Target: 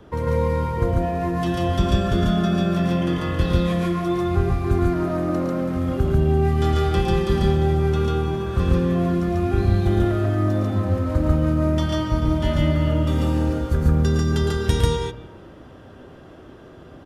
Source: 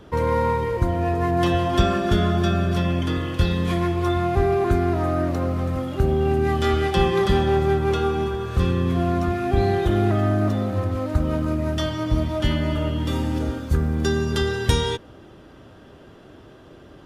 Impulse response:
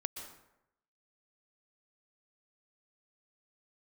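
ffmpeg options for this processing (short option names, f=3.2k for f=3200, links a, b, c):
-filter_complex "[0:a]acrossover=split=290|3000[a][b][c];[b]acompressor=threshold=-27dB:ratio=6[d];[a][d][c]amix=inputs=3:normalize=0,aecho=1:1:110.8|142.9:0.501|1,asplit=2[e][f];[1:a]atrim=start_sample=2205,lowpass=2.5k[g];[f][g]afir=irnorm=-1:irlink=0,volume=-5.5dB[h];[e][h]amix=inputs=2:normalize=0,volume=-4dB"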